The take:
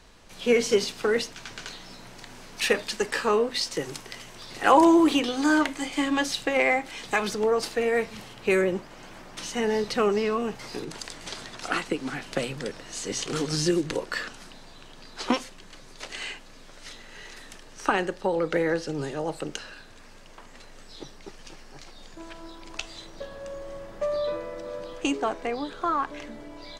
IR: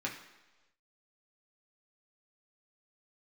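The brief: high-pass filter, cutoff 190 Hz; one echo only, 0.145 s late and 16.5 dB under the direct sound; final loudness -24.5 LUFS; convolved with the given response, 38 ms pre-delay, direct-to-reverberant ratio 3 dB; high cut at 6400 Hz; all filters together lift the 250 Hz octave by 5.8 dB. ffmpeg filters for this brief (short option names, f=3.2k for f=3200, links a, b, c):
-filter_complex "[0:a]highpass=190,lowpass=6.4k,equalizer=f=250:t=o:g=9,aecho=1:1:145:0.15,asplit=2[a][b];[1:a]atrim=start_sample=2205,adelay=38[c];[b][c]afir=irnorm=-1:irlink=0,volume=-6.5dB[d];[a][d]amix=inputs=2:normalize=0,volume=-3dB"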